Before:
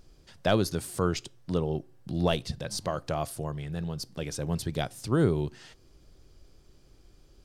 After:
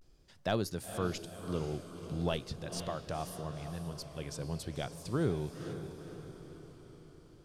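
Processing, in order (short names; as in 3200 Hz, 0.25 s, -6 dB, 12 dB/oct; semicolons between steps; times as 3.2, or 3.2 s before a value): diffused feedback echo 0.503 s, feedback 56%, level -9.5 dB; vibrato 0.39 Hz 57 cents; gain -7.5 dB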